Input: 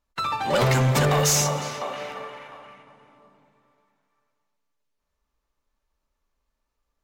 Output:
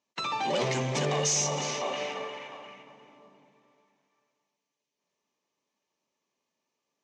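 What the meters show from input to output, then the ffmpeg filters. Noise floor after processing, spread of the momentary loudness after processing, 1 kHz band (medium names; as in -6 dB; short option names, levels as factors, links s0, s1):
under -85 dBFS, 17 LU, -6.0 dB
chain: -af "bandreject=f=2700:w=13,alimiter=limit=0.075:level=0:latency=1:release=13,highpass=f=150:w=0.5412,highpass=f=150:w=1.3066,equalizer=f=370:t=q:w=4:g=4,equalizer=f=1400:t=q:w=4:g=-10,equalizer=f=2700:t=q:w=4:g=8,equalizer=f=6100:t=q:w=4:g=7,lowpass=f=7300:w=0.5412,lowpass=f=7300:w=1.3066"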